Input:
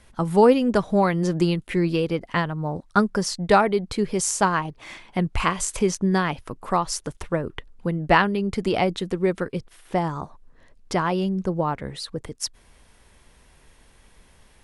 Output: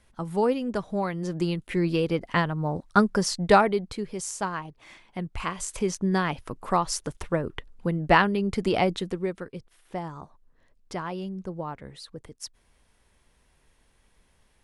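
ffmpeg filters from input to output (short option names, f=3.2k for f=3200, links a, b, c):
-af "volume=7.5dB,afade=t=in:st=1.21:d=1.03:silence=0.398107,afade=t=out:st=3.53:d=0.51:silence=0.354813,afade=t=in:st=5.38:d=1.11:silence=0.398107,afade=t=out:st=8.94:d=0.41:silence=0.375837"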